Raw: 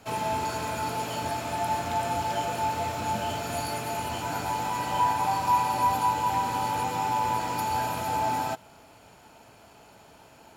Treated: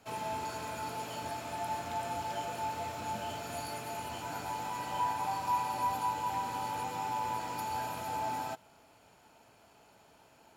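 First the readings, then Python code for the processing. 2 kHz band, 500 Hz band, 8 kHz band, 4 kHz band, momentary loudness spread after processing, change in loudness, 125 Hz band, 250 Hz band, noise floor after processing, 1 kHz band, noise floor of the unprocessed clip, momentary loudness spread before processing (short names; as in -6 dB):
-8.0 dB, -8.5 dB, -8.0 dB, -8.0 dB, 7 LU, -8.0 dB, -10.5 dB, -9.0 dB, -62 dBFS, -8.0 dB, -54 dBFS, 7 LU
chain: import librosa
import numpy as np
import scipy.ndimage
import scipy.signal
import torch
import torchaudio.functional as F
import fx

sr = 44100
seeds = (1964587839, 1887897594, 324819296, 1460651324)

y = fx.low_shelf(x, sr, hz=180.0, db=-3.5)
y = F.gain(torch.from_numpy(y), -8.0).numpy()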